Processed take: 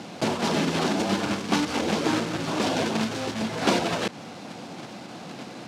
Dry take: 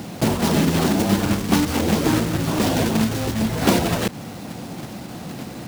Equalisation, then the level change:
band-pass filter 110–6,100 Hz
low-shelf EQ 220 Hz −11.5 dB
notch filter 1,900 Hz, Q 24
−1.5 dB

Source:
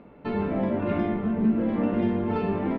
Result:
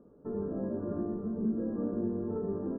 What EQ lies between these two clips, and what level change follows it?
Chebyshev low-pass with heavy ripple 1,700 Hz, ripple 9 dB
tilt shelving filter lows +7.5 dB, about 730 Hz
−8.5 dB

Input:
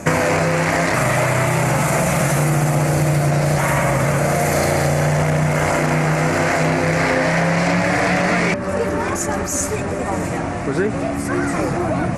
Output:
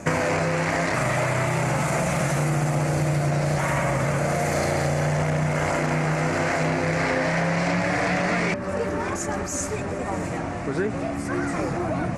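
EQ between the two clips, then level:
low-pass filter 8,800 Hz 12 dB per octave
−6.0 dB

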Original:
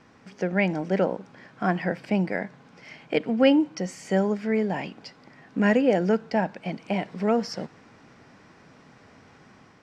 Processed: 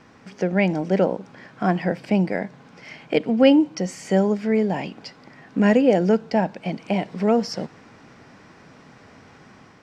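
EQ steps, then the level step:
dynamic equaliser 1,600 Hz, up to −5 dB, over −42 dBFS, Q 1.1
+4.5 dB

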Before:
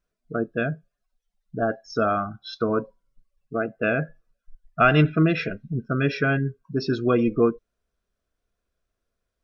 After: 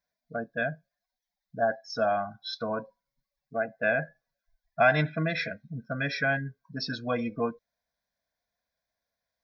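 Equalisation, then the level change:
high-pass filter 450 Hz 6 dB per octave
phaser with its sweep stopped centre 1,900 Hz, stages 8
+2.5 dB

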